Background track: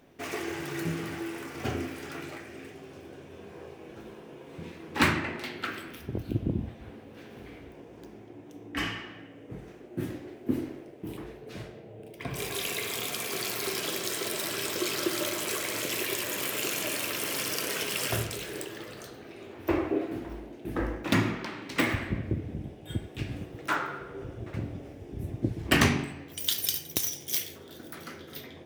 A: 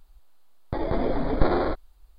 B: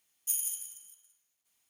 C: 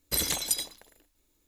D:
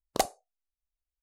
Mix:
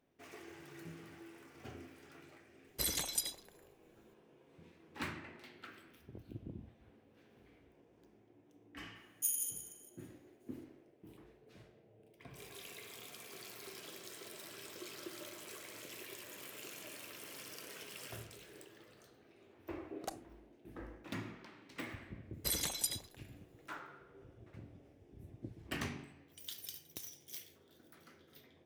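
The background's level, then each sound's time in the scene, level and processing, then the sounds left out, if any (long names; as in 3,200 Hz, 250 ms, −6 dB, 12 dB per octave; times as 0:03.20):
background track −18.5 dB
0:02.67: mix in C −8 dB
0:08.95: mix in B −4.5 dB
0:19.88: mix in D −14.5 dB + saturating transformer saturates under 590 Hz
0:22.33: mix in C −8 dB
not used: A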